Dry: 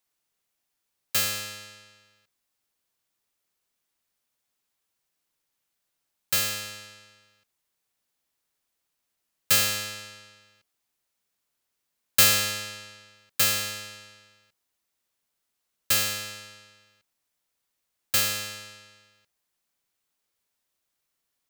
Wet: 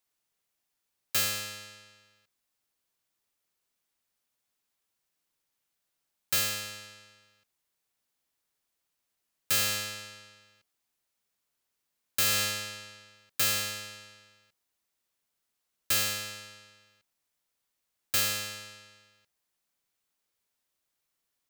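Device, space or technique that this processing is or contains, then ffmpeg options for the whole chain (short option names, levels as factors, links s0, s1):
limiter into clipper: -af "alimiter=limit=0.224:level=0:latency=1:release=179,asoftclip=type=hard:threshold=0.119,volume=0.794"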